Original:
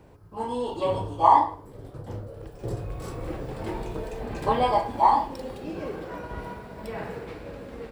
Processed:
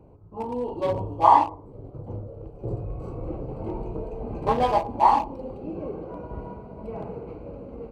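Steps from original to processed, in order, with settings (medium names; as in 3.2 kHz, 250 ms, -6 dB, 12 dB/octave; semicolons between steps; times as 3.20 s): local Wiener filter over 25 samples; trim +1.5 dB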